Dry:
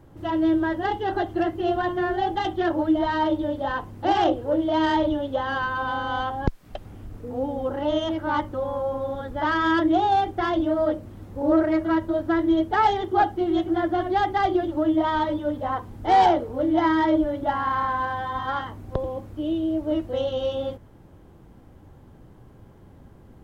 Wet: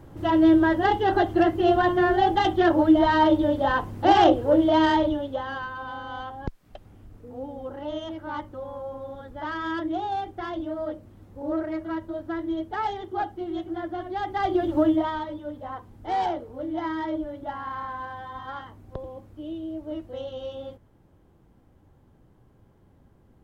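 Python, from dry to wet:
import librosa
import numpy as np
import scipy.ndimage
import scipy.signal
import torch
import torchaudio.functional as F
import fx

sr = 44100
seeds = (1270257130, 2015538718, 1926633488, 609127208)

y = fx.gain(x, sr, db=fx.line((4.65, 4.0), (5.75, -8.5), (14.16, -8.5), (14.8, 3.5), (15.24, -9.0)))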